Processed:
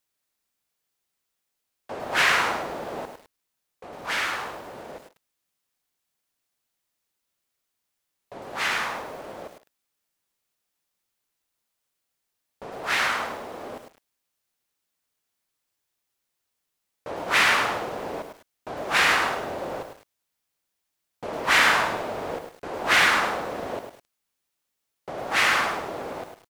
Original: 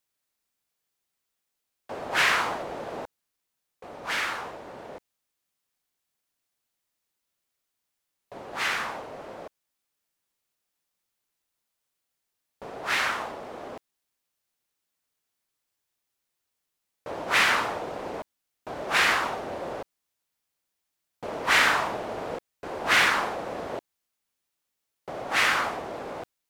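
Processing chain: speakerphone echo 150 ms, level -22 dB; bit-crushed delay 104 ms, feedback 35%, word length 8-bit, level -7 dB; trim +1.5 dB

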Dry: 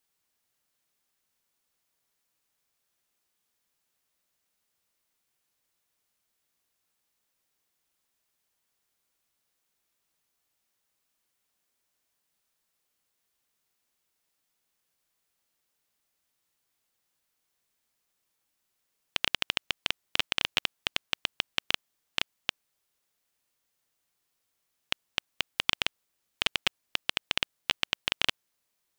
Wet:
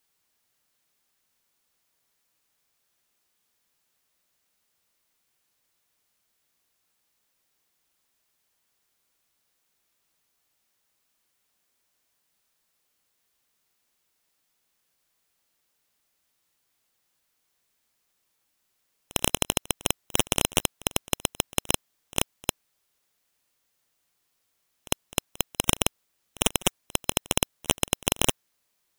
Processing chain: tracing distortion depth 0.16 ms; reverse echo 52 ms -22.5 dB; spectral gate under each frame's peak -20 dB strong; trim +4.5 dB

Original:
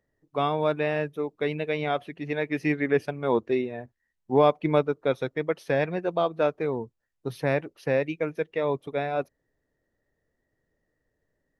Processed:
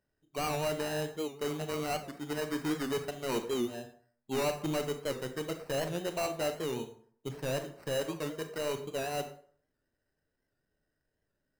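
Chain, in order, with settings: band-stop 490 Hz, Q 12; sample-rate reducer 3.4 kHz, jitter 0%; hard clipper -22.5 dBFS, distortion -8 dB; on a send at -7 dB: reverberation RT60 0.55 s, pre-delay 23 ms; on the sum: warped record 78 rpm, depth 100 cents; trim -6 dB

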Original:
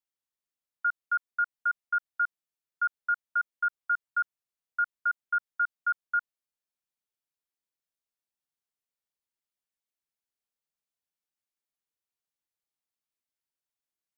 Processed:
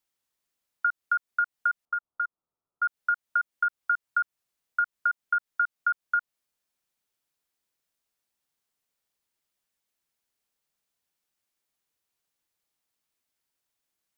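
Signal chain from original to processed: compression, threshold -32 dBFS, peak gain reduction 8.5 dB; 1.85–2.83 s: steep low-pass 1.4 kHz 96 dB/octave; trim +9 dB

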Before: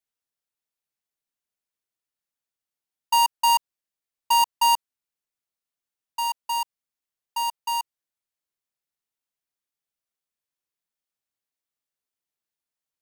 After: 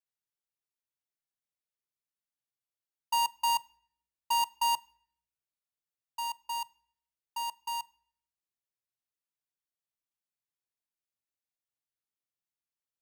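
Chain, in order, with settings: peaking EQ 120 Hz +10 dB 0.31 oct; on a send: reverberation RT60 0.65 s, pre-delay 6 ms, DRR 19 dB; on the sum: trim -8.5 dB

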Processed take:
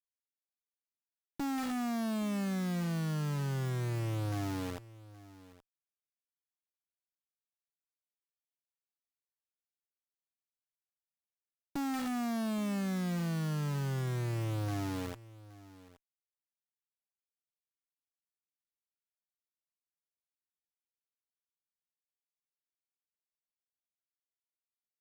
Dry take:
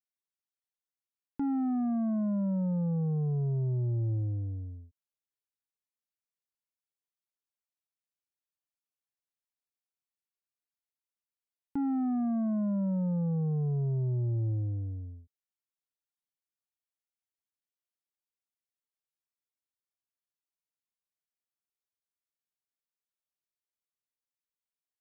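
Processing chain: comb 5.9 ms, depth 82%; de-hum 438.9 Hz, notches 34; overdrive pedal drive 38 dB, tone 1.3 kHz, clips at -22 dBFS; bit crusher 6-bit; valve stage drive 32 dB, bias 0.6; delay 821 ms -19 dB

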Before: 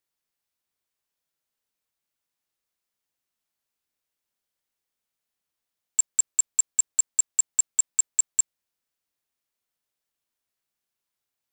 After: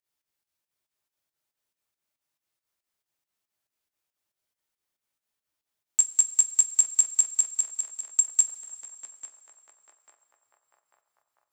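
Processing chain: on a send: band-passed feedback delay 845 ms, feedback 68%, band-pass 920 Hz, level -6 dB; on the sum: volume shaper 139 bpm, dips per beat 2, -20 dB, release 113 ms; two-slope reverb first 0.2 s, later 3.1 s, from -18 dB, DRR 6 dB

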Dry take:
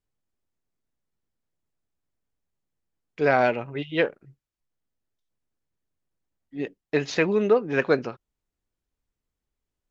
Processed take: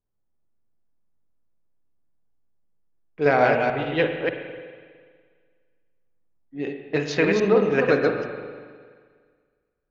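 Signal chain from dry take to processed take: chunks repeated in reverse 148 ms, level -2.5 dB; level-controlled noise filter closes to 1.2 kHz, open at -21.5 dBFS; spring tank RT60 1.8 s, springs 41/51 ms, chirp 30 ms, DRR 5.5 dB

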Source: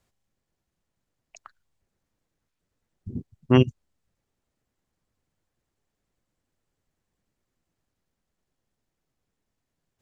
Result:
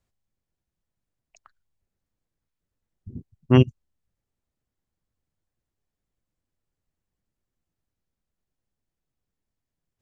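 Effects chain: bass shelf 140 Hz +7 dB; upward expansion 1.5:1, over -27 dBFS

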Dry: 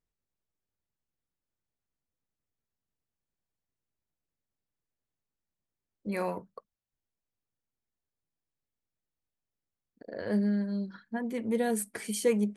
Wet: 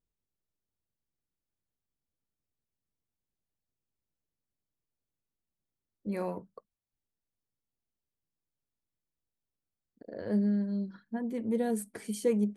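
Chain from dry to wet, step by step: FFT filter 310 Hz 0 dB, 2.3 kHz -9 dB, 3.7 kHz -7 dB

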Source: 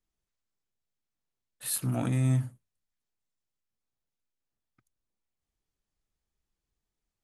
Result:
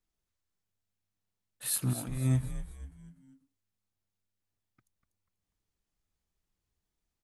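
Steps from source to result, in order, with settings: 1.93–2.43 s: gate -24 dBFS, range -11 dB; frequency-shifting echo 244 ms, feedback 41%, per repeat -99 Hz, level -10 dB

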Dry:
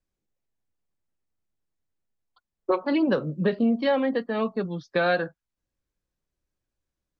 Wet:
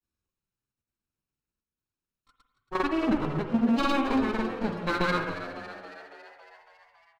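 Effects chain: comb filter that takes the minimum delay 0.74 ms; square tremolo 1.1 Hz, depth 65%, duty 80%; granulator, pitch spread up and down by 0 st; on a send: frequency-shifting echo 277 ms, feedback 63%, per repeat +93 Hz, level -12.5 dB; on the sum: spring tank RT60 1.1 s, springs 45/53 ms, chirp 55 ms, DRR 7 dB

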